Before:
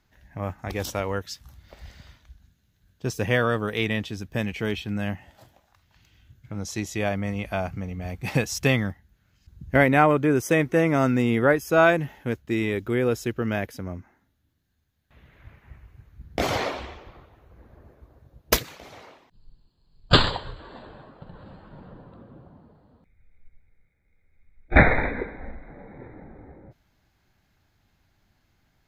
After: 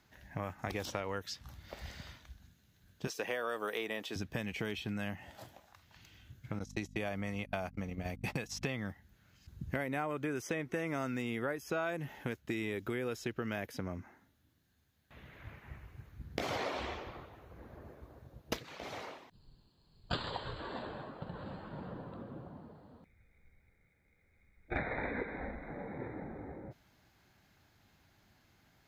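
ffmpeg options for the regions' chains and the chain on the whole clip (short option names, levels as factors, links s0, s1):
-filter_complex "[0:a]asettb=1/sr,asplit=3[s0][s1][s2];[s0]atrim=end=3.074[s3];[s1]atrim=start=3.07:end=4.16,asetpts=PTS-STARTPTS,afade=t=in:d=0.004:c=qsin,afade=t=out:st=1.086:d=0.004:c=qsin,highpass=440,highshelf=f=12000:g=10.5[s4];[s2]atrim=start=4.156[s5];[s3][s4]acrossfade=d=0.004:c1=hsin:c2=qsin[s6];[s6][s5]acrossfade=d=0.004:c1=qsin:c2=hsin,asettb=1/sr,asplit=3[s7][s8][s9];[s7]atrim=end=6.594[s10];[s8]atrim=start=6.59:end=8.62,asetpts=PTS-STARTPTS,afade=t=in:d=0.004:c=qsin,afade=t=out:st=2.026:d=0.004:c=qsin,agate=range=0.02:threshold=0.0224:ratio=16:release=100:detection=peak,aeval=exprs='val(0)+0.00562*(sin(2*PI*50*n/s)+sin(2*PI*2*50*n/s)/2+sin(2*PI*3*50*n/s)/3+sin(2*PI*4*50*n/s)/4+sin(2*PI*5*50*n/s)/5)':c=same[s11];[s9]atrim=start=8.616[s12];[s10][s11]acrossfade=d=0.004:c1=hsin:c2=qsin[s13];[s13][s12]acrossfade=d=0.004:c1=qsin:c2=hsin,acompressor=threshold=0.0224:ratio=2.5,highpass=f=110:p=1,acrossover=split=1200|5600[s14][s15][s16];[s14]acompressor=threshold=0.0141:ratio=4[s17];[s15]acompressor=threshold=0.00708:ratio=4[s18];[s16]acompressor=threshold=0.00112:ratio=4[s19];[s17][s18][s19]amix=inputs=3:normalize=0,volume=1.26"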